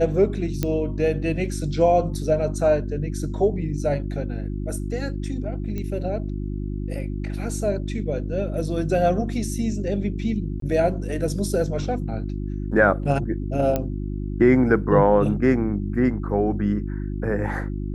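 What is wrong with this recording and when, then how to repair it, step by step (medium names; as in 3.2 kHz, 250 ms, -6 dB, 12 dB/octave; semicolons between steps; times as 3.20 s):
hum 50 Hz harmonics 7 -28 dBFS
0.63 s: pop -9 dBFS
5.78 s: pop -18 dBFS
10.60–10.62 s: dropout 23 ms
13.76 s: pop -10 dBFS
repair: de-click; de-hum 50 Hz, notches 7; interpolate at 10.60 s, 23 ms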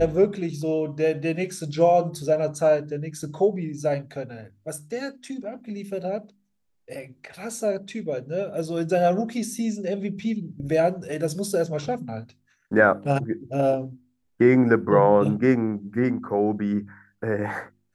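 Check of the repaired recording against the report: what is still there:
nothing left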